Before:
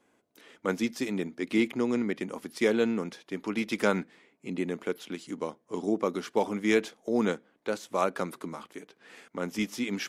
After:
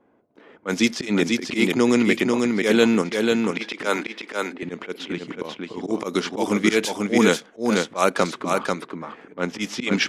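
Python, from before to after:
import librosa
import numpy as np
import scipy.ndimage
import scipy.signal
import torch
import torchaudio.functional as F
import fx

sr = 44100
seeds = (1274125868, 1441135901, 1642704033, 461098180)

p1 = fx.highpass(x, sr, hz=280.0, slope=24, at=(3.51, 4.63))
p2 = fx.env_lowpass(p1, sr, base_hz=920.0, full_db=-23.0)
p3 = fx.high_shelf(p2, sr, hz=2500.0, db=10.5)
p4 = fx.level_steps(p3, sr, step_db=16)
p5 = p3 + (p4 * 10.0 ** (1.0 / 20.0))
p6 = fx.auto_swell(p5, sr, attack_ms=122.0)
p7 = p6 + fx.echo_single(p6, sr, ms=491, db=-3.5, dry=0)
y = p7 * 10.0 ** (5.5 / 20.0)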